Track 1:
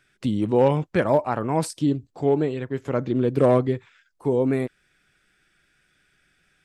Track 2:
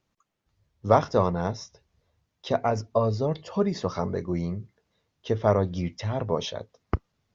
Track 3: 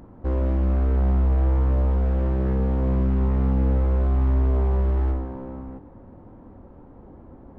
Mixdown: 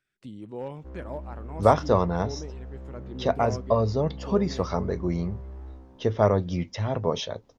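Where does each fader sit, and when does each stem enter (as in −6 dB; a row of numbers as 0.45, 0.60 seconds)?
−17.5, +1.0, −18.5 decibels; 0.00, 0.75, 0.60 seconds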